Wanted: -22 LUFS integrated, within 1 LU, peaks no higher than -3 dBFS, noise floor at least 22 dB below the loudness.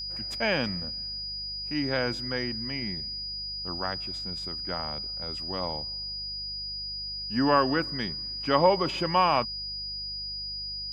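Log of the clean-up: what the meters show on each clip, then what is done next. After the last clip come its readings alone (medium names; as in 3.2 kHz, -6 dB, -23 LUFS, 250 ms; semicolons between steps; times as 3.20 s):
hum 50 Hz; highest harmonic 200 Hz; hum level -45 dBFS; steady tone 4.9 kHz; tone level -33 dBFS; loudness -29.0 LUFS; peak level -8.0 dBFS; loudness target -22.0 LUFS
-> de-hum 50 Hz, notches 4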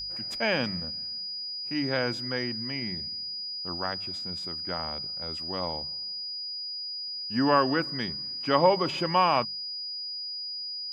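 hum not found; steady tone 4.9 kHz; tone level -33 dBFS
-> band-stop 4.9 kHz, Q 30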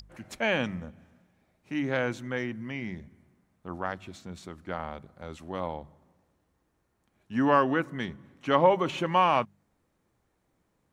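steady tone not found; loudness -28.5 LUFS; peak level -8.5 dBFS; loudness target -22.0 LUFS
-> trim +6.5 dB; peak limiter -3 dBFS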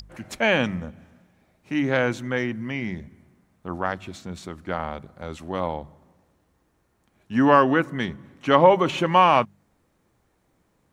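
loudness -22.5 LUFS; peak level -3.0 dBFS; noise floor -68 dBFS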